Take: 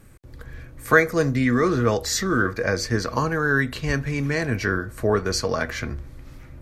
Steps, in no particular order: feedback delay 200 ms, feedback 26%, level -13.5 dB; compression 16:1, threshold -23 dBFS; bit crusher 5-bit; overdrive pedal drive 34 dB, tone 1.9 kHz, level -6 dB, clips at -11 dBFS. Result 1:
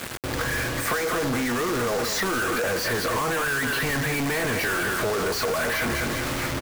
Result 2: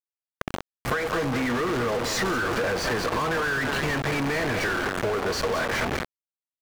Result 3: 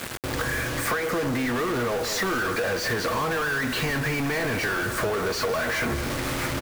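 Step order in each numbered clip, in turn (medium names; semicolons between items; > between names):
feedback delay > overdrive pedal > compression > bit crusher; feedback delay > bit crusher > overdrive pedal > compression; overdrive pedal > feedback delay > bit crusher > compression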